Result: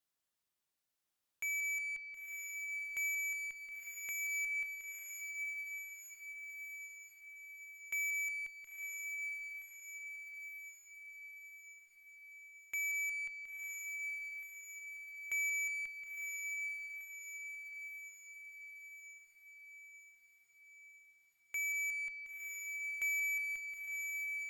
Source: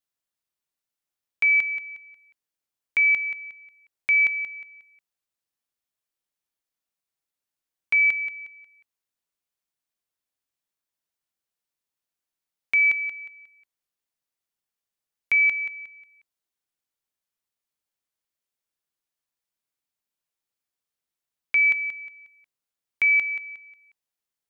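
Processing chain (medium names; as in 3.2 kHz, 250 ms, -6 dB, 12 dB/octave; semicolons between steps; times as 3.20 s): peak limiter -22.5 dBFS, peak gain reduction 7.5 dB; overload inside the chain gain 30.5 dB; Chebyshev shaper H 4 -30 dB, 6 -26 dB, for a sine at -30 dBFS; saturation -36 dBFS, distortion -14 dB; echo that smears into a reverb 974 ms, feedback 59%, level -4 dB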